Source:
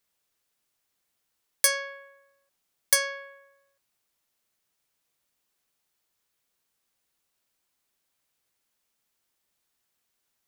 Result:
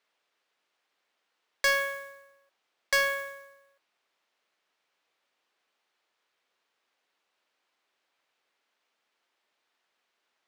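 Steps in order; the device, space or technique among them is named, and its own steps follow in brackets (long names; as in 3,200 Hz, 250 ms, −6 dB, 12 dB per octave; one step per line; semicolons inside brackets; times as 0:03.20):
carbon microphone (band-pass filter 390–3,300 Hz; soft clipping −25.5 dBFS, distortion −11 dB; noise that follows the level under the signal 16 dB)
level +7 dB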